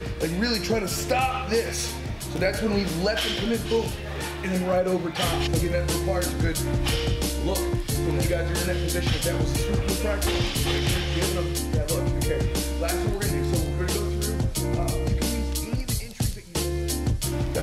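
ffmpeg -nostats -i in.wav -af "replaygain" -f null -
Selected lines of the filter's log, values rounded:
track_gain = +7.4 dB
track_peak = 0.223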